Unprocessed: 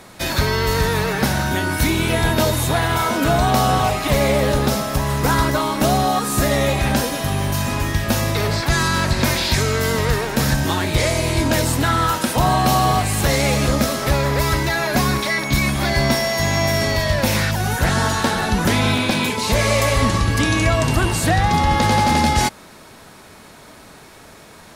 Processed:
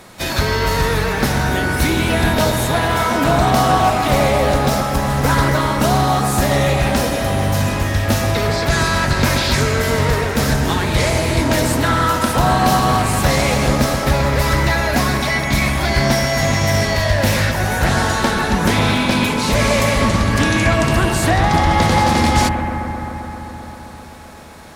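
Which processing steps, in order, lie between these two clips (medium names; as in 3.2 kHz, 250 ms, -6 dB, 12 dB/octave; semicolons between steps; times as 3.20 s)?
bucket-brigade echo 131 ms, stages 2048, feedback 83%, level -8.5 dB; harmony voices +3 st -18 dB, +7 st -17 dB; loudspeaker Doppler distortion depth 0.15 ms; trim +1 dB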